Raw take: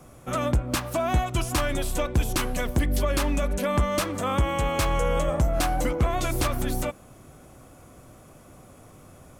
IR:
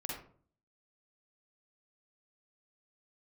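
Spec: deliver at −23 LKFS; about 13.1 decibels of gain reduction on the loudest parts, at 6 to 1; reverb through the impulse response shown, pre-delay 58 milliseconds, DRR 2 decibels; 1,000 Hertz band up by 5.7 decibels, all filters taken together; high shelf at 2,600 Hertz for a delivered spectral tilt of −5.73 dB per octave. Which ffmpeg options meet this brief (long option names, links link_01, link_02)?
-filter_complex "[0:a]equalizer=frequency=1000:width_type=o:gain=8.5,highshelf=frequency=2600:gain=-6,acompressor=threshold=-32dB:ratio=6,asplit=2[link_01][link_02];[1:a]atrim=start_sample=2205,adelay=58[link_03];[link_02][link_03]afir=irnorm=-1:irlink=0,volume=-3dB[link_04];[link_01][link_04]amix=inputs=2:normalize=0,volume=10dB"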